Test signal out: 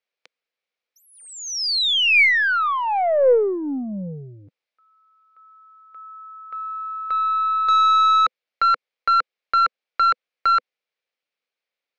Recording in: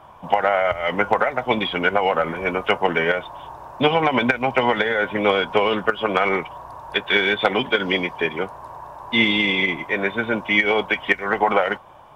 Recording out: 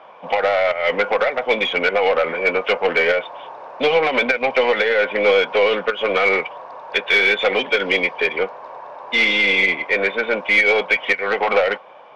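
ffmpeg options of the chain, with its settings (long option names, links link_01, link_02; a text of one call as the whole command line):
ffmpeg -i in.wav -af "asoftclip=type=tanh:threshold=-17dB,highpass=frequency=220:width=0.5412,highpass=frequency=220:width=1.3066,equalizer=frequency=230:width_type=q:width=4:gain=-6,equalizer=frequency=330:width_type=q:width=4:gain=-7,equalizer=frequency=500:width_type=q:width=4:gain=8,equalizer=frequency=980:width_type=q:width=4:gain=-4,equalizer=frequency=2300:width_type=q:width=4:gain=7,lowpass=frequency=4800:width=0.5412,lowpass=frequency=4800:width=1.3066,aeval=exprs='0.422*(cos(1*acos(clip(val(0)/0.422,-1,1)))-cos(1*PI/2))+0.00668*(cos(6*acos(clip(val(0)/0.422,-1,1)))-cos(6*PI/2))':channel_layout=same,volume=3.5dB" out.wav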